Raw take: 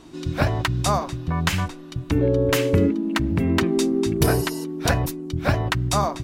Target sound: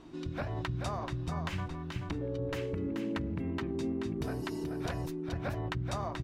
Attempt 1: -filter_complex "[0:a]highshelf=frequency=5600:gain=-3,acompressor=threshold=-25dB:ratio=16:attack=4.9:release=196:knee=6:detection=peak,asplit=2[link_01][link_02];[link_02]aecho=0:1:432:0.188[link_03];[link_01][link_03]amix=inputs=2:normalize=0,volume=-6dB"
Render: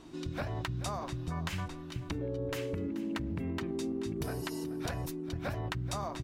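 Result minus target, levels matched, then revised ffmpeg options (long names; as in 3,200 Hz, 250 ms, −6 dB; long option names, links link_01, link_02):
8,000 Hz band +6.5 dB; echo-to-direct −8.5 dB
-filter_complex "[0:a]highshelf=frequency=5600:gain=-14.5,acompressor=threshold=-25dB:ratio=16:attack=4.9:release=196:knee=6:detection=peak,asplit=2[link_01][link_02];[link_02]aecho=0:1:432:0.501[link_03];[link_01][link_03]amix=inputs=2:normalize=0,volume=-6dB"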